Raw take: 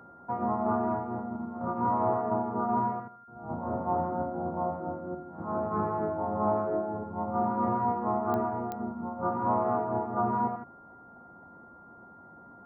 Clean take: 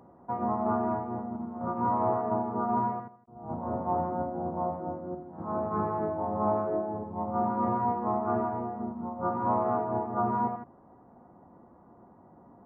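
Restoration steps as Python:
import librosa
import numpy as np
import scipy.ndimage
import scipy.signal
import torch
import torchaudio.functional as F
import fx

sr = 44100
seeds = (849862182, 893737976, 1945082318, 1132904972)

y = fx.fix_declick_ar(x, sr, threshold=10.0)
y = fx.notch(y, sr, hz=1400.0, q=30.0)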